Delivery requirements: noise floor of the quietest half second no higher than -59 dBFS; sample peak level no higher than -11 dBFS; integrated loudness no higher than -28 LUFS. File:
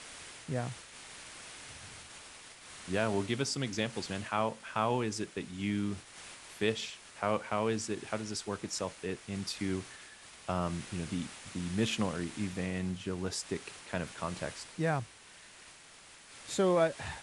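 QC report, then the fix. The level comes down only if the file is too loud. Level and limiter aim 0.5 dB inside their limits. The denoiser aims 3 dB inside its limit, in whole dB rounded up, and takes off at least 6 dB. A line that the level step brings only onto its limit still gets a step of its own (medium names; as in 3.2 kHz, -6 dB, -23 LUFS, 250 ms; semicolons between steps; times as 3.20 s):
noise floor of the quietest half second -55 dBFS: fail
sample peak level -15.0 dBFS: pass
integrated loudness -35.0 LUFS: pass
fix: noise reduction 7 dB, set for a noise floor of -55 dBFS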